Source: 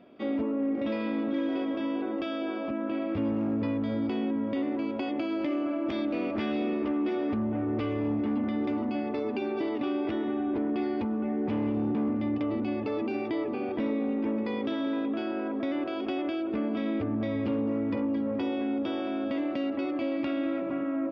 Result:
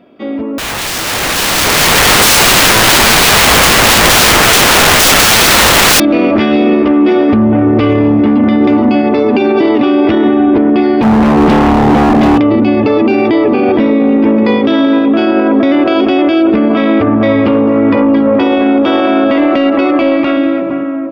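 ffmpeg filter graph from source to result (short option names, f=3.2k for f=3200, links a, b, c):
-filter_complex "[0:a]asettb=1/sr,asplit=3[a][b][c];[a]atrim=end=0.584[d];[b]atrim=start=0.58:end=6,asetpts=PTS-STARTPTS,afade=t=in:d=0.004:c=qsin,afade=t=out:st=5.416:d=0.004:c=qsin,aecho=1:1:5.5:0.78,atrim=end_sample=239022,aeval=exprs='(mod(44.7*val(0)+1,2)-1)/44.7':c=same,acontrast=87[e];[c]atrim=start=5.996[f];[d][e]acrossfade=d=0.004:c1=hsin:c2=qsin[g];[g][f]acrossfade=d=0.004:c1=qsin:c2=hsin,asettb=1/sr,asplit=3[h][i][j];[h]atrim=end=11.024[k];[i]atrim=start=11.02:end=12.39,asetpts=PTS-STARTPTS,afade=t=in:d=0.004:c=qsin,afade=t=out:st=1.366:d=0.004:c=qsin,highpass=130,aeval=exprs='0.0376*(abs(mod(val(0)/0.0376+3,4)-2)-1)':c=same[l];[j]atrim=start=12.386[m];[k][l]acrossfade=d=0.004:c1=hsin:c2=qsin[n];[n][m]acrossfade=d=0.004:c1=qsin:c2=hsin,asettb=1/sr,asplit=3[o][p][q];[o]atrim=end=16.704[r];[p]atrim=start=16.7:end=20.37,asetpts=PTS-STARTPTS,afade=t=in:d=0.004:c=qsin,afade=t=out:st=3.666:d=0.004:c=qsin,equalizer=f=1.2k:w=5.9:g=3,asplit=2[s][t];[t]highpass=f=720:p=1,volume=9dB,asoftclip=type=tanh:threshold=-18.5dB[u];[s][u]amix=inputs=2:normalize=0,lowpass=f=2.3k:p=1,volume=-6dB[v];[q]atrim=start=20.366[w];[r][v]acrossfade=d=0.004:c1=hsin:c2=qsin[x];[x][w]acrossfade=d=0.004:c1=qsin:c2=hsin,dynaudnorm=f=510:g=7:m=16dB,alimiter=level_in=11.5dB:limit=-1dB:release=50:level=0:latency=1,volume=-1dB"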